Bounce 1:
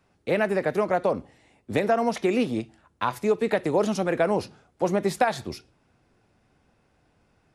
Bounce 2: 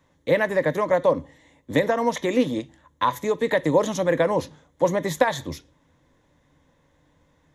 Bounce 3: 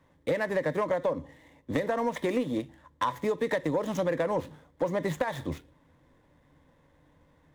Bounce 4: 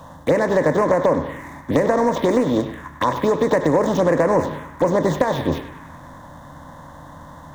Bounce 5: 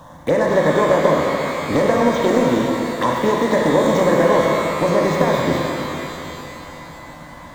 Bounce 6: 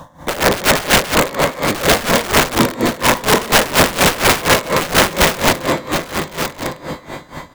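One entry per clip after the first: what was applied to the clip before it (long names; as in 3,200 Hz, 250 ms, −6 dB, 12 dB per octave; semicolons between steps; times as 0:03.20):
EQ curve with evenly spaced ripples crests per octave 1.1, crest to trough 11 dB; level +1.5 dB
running median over 9 samples; downward compressor 10 to 1, threshold −23 dBFS, peak gain reduction 11 dB; soft clipping −16.5 dBFS, distortion −22 dB
compressor on every frequency bin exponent 0.6; phaser swept by the level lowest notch 330 Hz, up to 3,400 Hz, full sweep at −21 dBFS; feedback echo with a band-pass in the loop 99 ms, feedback 72%, band-pass 1,500 Hz, level −9 dB; level +8.5 dB
reverb with rising layers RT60 3 s, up +12 semitones, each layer −8 dB, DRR 0 dB; level −1 dB
wrap-around overflow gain 11.5 dB; on a send: single-tap delay 1,109 ms −9 dB; on the sum: tremolo with a sine in dB 4.2 Hz, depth 18 dB; level +8 dB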